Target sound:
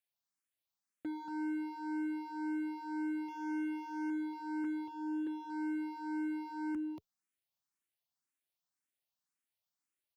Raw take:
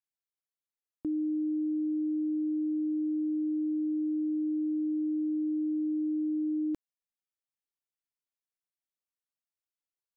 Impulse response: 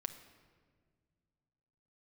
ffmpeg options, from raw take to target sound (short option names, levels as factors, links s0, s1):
-filter_complex "[0:a]asettb=1/sr,asplit=3[s0][s1][s2];[s0]atrim=end=3.284[s3];[s1]atrim=start=3.28:end=4.1,asetpts=PTS-STARTPTS,afade=t=in:d=0.004:c=qsin,afade=t=out:st=0.816:d=0.004:c=qsin,bass=f=250:g=6,treble=f=4000:g=15[s4];[s2]atrim=start=4.096[s5];[s3][s4]acrossfade=d=0.004:c1=hsin:c2=qsin[s6];[s6][s5]acrossfade=d=0.004:c1=qsin:c2=hsin,asplit=2[s7][s8];[s8]alimiter=level_in=3.55:limit=0.0631:level=0:latency=1,volume=0.282,volume=0.794[s9];[s7][s9]amix=inputs=2:normalize=0,equalizer=f=460:w=6.3:g=-11.5,asettb=1/sr,asplit=3[s10][s11][s12];[s10]atrim=end=4.644[s13];[s11]atrim=start=4.64:end=5.27,asetpts=PTS-STARTPTS,afade=t=in:d=0.004:c=qsin,afade=t=out:st=0.626:d=0.004:c=qsin,acrossover=split=170|380[s14][s15][s16];[s14]acompressor=threshold=0.00158:ratio=4[s17];[s15]acompressor=threshold=0.0178:ratio=4[s18];[s16]acompressor=threshold=0.00891:ratio=4[s19];[s17][s18][s19]amix=inputs=3:normalize=0[s20];[s12]atrim=start=5.266[s21];[s13][s20]acrossfade=d=0.004:c1=hsin:c2=qsin[s22];[s22][s21]acrossfade=d=0.004:c1=qsin:c2=hsin,highpass=f=82:w=0.5412,highpass=f=82:w=1.3066,bandreject=f=430:w=12,asplit=2[s23][s24];[s24]aecho=0:1:232:0.447[s25];[s23][s25]amix=inputs=2:normalize=0,asoftclip=type=hard:threshold=0.0188,asplit=2[s26][s27];[s27]afreqshift=1.9[s28];[s26][s28]amix=inputs=2:normalize=1"